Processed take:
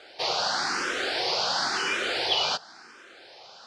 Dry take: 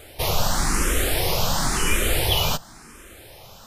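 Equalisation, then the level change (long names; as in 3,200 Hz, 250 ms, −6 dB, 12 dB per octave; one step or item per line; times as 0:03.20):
loudspeaker in its box 340–5,200 Hz, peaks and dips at 420 Hz +6 dB, 770 Hz +6 dB, 1,500 Hz +9 dB, 4,600 Hz +8 dB
high-shelf EQ 4,100 Hz +7.5 dB
notch filter 430 Hz, Q 12
−6.0 dB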